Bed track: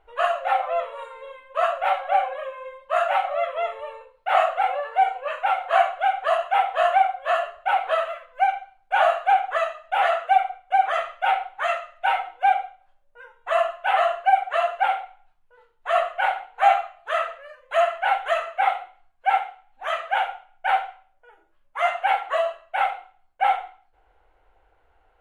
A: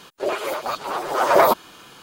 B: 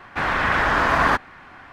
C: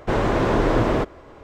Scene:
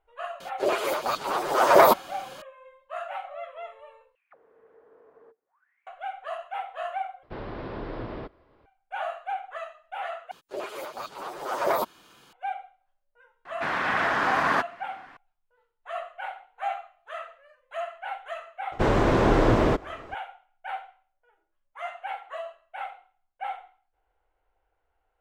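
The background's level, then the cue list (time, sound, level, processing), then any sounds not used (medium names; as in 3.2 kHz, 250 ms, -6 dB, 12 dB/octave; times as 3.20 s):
bed track -13.5 dB
0.40 s: add A -1 dB
4.15 s: replace with B -14.5 dB + auto-wah 450–3000 Hz, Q 20, down, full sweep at -22 dBFS
7.23 s: replace with C -16.5 dB + steep low-pass 5.1 kHz 72 dB/octave
10.31 s: replace with A -10.5 dB
13.45 s: add B -5.5 dB + high-pass 160 Hz
18.72 s: add C -1 dB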